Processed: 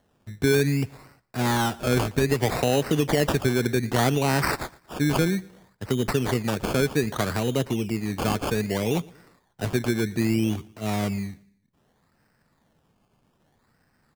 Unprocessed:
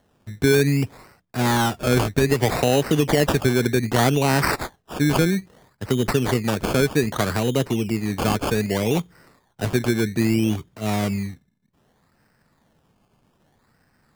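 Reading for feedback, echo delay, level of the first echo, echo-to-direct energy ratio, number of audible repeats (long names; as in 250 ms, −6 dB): 38%, 116 ms, −23.0 dB, −22.5 dB, 2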